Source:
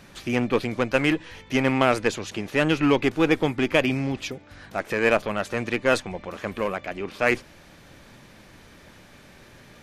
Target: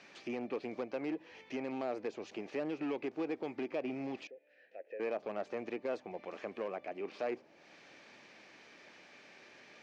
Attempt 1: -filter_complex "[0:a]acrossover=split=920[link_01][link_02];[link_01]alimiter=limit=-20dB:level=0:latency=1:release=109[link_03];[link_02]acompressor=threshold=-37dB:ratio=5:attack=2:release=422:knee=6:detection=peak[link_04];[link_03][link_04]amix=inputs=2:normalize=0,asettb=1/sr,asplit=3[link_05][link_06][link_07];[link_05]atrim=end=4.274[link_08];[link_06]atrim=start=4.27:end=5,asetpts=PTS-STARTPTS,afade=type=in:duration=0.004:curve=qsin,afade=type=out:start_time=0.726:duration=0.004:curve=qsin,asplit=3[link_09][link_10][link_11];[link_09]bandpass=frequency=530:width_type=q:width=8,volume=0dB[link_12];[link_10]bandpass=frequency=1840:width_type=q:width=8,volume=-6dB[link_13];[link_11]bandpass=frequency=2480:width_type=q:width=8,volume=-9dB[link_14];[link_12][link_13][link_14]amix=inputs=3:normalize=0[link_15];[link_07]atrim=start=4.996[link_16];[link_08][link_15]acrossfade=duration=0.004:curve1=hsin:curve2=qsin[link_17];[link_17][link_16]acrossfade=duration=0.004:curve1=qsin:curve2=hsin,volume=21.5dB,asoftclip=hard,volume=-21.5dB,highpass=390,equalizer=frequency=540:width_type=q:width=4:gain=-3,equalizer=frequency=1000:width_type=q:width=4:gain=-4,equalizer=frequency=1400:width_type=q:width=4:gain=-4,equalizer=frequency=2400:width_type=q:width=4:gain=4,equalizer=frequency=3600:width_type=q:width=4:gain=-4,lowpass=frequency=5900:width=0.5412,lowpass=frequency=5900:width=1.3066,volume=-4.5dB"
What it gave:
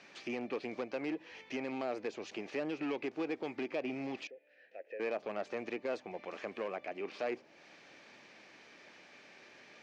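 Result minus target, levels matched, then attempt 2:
downward compressor: peak gain reduction −5 dB
-filter_complex "[0:a]acrossover=split=920[link_01][link_02];[link_01]alimiter=limit=-20dB:level=0:latency=1:release=109[link_03];[link_02]acompressor=threshold=-43dB:ratio=5:attack=2:release=422:knee=6:detection=peak[link_04];[link_03][link_04]amix=inputs=2:normalize=0,asettb=1/sr,asplit=3[link_05][link_06][link_07];[link_05]atrim=end=4.274[link_08];[link_06]atrim=start=4.27:end=5,asetpts=PTS-STARTPTS,afade=type=in:duration=0.004:curve=qsin,afade=type=out:start_time=0.726:duration=0.004:curve=qsin,asplit=3[link_09][link_10][link_11];[link_09]bandpass=frequency=530:width_type=q:width=8,volume=0dB[link_12];[link_10]bandpass=frequency=1840:width_type=q:width=8,volume=-6dB[link_13];[link_11]bandpass=frequency=2480:width_type=q:width=8,volume=-9dB[link_14];[link_12][link_13][link_14]amix=inputs=3:normalize=0[link_15];[link_07]atrim=start=4.996[link_16];[link_08][link_15]acrossfade=duration=0.004:curve1=hsin:curve2=qsin[link_17];[link_17][link_16]acrossfade=duration=0.004:curve1=qsin:curve2=hsin,volume=21.5dB,asoftclip=hard,volume=-21.5dB,highpass=390,equalizer=frequency=540:width_type=q:width=4:gain=-3,equalizer=frequency=1000:width_type=q:width=4:gain=-4,equalizer=frequency=1400:width_type=q:width=4:gain=-4,equalizer=frequency=2400:width_type=q:width=4:gain=4,equalizer=frequency=3600:width_type=q:width=4:gain=-4,lowpass=frequency=5900:width=0.5412,lowpass=frequency=5900:width=1.3066,volume=-4.5dB"

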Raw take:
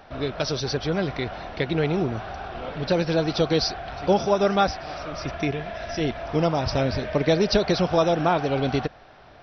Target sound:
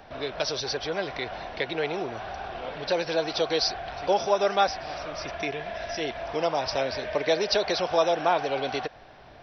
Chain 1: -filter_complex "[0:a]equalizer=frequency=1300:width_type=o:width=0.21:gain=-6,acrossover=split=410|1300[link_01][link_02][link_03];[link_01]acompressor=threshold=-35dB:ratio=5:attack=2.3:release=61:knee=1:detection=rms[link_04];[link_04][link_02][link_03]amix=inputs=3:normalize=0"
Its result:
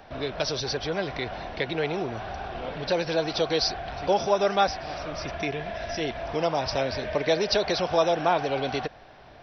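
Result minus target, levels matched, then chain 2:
downward compressor: peak gain reduction −7 dB
-filter_complex "[0:a]equalizer=frequency=1300:width_type=o:width=0.21:gain=-6,acrossover=split=410|1300[link_01][link_02][link_03];[link_01]acompressor=threshold=-44dB:ratio=5:attack=2.3:release=61:knee=1:detection=rms[link_04];[link_04][link_02][link_03]amix=inputs=3:normalize=0"

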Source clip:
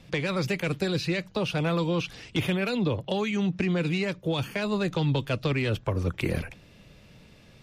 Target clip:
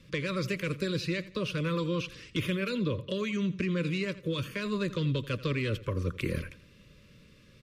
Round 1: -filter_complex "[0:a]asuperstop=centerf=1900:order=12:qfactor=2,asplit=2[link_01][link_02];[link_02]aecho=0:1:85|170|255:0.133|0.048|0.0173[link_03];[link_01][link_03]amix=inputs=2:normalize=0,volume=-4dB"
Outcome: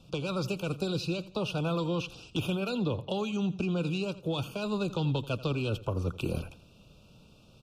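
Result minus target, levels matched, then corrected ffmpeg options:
2,000 Hz band −4.5 dB
-filter_complex "[0:a]asuperstop=centerf=770:order=12:qfactor=2,asplit=2[link_01][link_02];[link_02]aecho=0:1:85|170|255:0.133|0.048|0.0173[link_03];[link_01][link_03]amix=inputs=2:normalize=0,volume=-4dB"

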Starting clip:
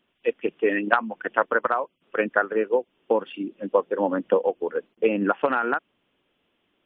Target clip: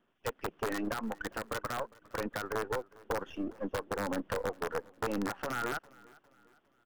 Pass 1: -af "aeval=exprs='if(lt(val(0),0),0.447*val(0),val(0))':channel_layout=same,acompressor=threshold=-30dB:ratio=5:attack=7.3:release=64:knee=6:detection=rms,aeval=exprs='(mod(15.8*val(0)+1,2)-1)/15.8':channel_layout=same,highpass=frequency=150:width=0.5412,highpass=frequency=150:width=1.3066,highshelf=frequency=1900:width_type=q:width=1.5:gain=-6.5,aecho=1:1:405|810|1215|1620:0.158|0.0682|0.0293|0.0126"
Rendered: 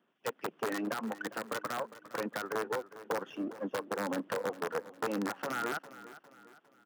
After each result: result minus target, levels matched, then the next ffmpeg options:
125 Hz band −5.0 dB; echo-to-direct +7.5 dB
-af "aeval=exprs='if(lt(val(0),0),0.447*val(0),val(0))':channel_layout=same,acompressor=threshold=-30dB:ratio=5:attack=7.3:release=64:knee=6:detection=rms,aeval=exprs='(mod(15.8*val(0)+1,2)-1)/15.8':channel_layout=same,highshelf=frequency=1900:width_type=q:width=1.5:gain=-6.5,aecho=1:1:405|810|1215|1620:0.158|0.0682|0.0293|0.0126"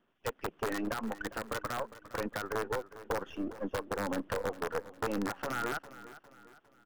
echo-to-direct +7.5 dB
-af "aeval=exprs='if(lt(val(0),0),0.447*val(0),val(0))':channel_layout=same,acompressor=threshold=-30dB:ratio=5:attack=7.3:release=64:knee=6:detection=rms,aeval=exprs='(mod(15.8*val(0)+1,2)-1)/15.8':channel_layout=same,highshelf=frequency=1900:width_type=q:width=1.5:gain=-6.5,aecho=1:1:405|810|1215:0.0668|0.0287|0.0124"

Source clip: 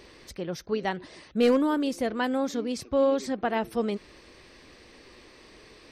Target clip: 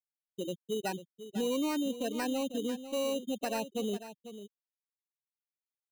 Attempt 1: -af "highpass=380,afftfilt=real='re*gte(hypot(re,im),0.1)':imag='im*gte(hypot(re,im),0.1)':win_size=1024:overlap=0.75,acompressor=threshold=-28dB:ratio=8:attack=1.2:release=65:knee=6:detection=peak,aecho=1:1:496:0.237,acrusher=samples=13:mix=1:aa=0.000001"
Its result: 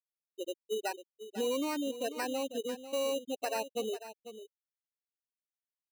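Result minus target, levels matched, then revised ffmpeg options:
125 Hz band −13.0 dB
-af "highpass=170,afftfilt=real='re*gte(hypot(re,im),0.1)':imag='im*gte(hypot(re,im),0.1)':win_size=1024:overlap=0.75,acompressor=threshold=-28dB:ratio=8:attack=1.2:release=65:knee=6:detection=peak,aecho=1:1:496:0.237,acrusher=samples=13:mix=1:aa=0.000001"

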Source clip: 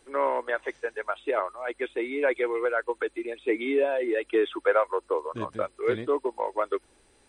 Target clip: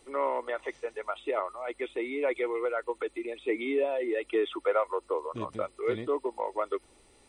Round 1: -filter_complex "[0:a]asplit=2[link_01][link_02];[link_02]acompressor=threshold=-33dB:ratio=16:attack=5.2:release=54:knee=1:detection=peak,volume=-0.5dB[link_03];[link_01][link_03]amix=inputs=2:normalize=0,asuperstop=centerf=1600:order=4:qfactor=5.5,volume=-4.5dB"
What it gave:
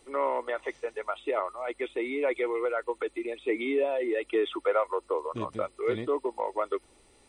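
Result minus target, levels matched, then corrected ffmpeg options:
downward compressor: peak gain reduction −7.5 dB
-filter_complex "[0:a]asplit=2[link_01][link_02];[link_02]acompressor=threshold=-41dB:ratio=16:attack=5.2:release=54:knee=1:detection=peak,volume=-0.5dB[link_03];[link_01][link_03]amix=inputs=2:normalize=0,asuperstop=centerf=1600:order=4:qfactor=5.5,volume=-4.5dB"

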